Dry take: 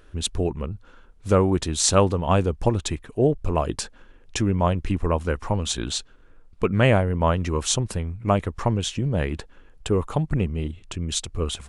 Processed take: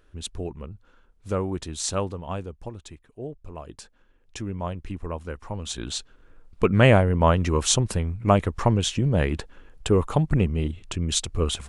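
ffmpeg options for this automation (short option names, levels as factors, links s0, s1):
-af "volume=3.16,afade=t=out:st=1.84:d=0.86:silence=0.398107,afade=t=in:st=3.58:d=0.94:silence=0.473151,afade=t=in:st=5.5:d=1.16:silence=0.266073"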